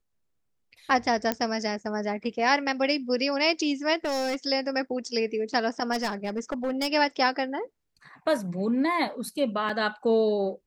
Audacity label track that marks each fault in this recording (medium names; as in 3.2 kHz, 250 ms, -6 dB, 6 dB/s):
1.320000	1.320000	pop -11 dBFS
4.050000	4.360000	clipped -25 dBFS
5.920000	6.880000	clipped -23.5 dBFS
9.690000	9.700000	dropout 5.1 ms